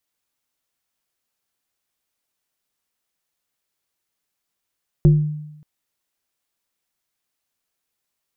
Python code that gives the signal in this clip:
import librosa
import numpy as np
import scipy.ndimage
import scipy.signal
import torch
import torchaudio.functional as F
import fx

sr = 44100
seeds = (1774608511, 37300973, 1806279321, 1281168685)

y = fx.fm2(sr, length_s=0.58, level_db=-6.5, carrier_hz=151.0, ratio=1.32, index=0.63, index_s=0.51, decay_s=0.9, shape='exponential')